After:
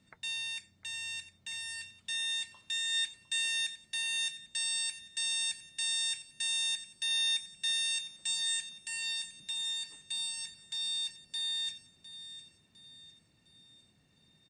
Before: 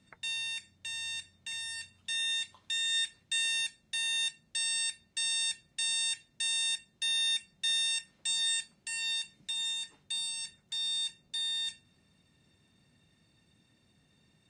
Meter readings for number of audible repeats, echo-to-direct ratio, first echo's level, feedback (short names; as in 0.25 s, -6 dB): 3, -13.5 dB, -14.5 dB, 45%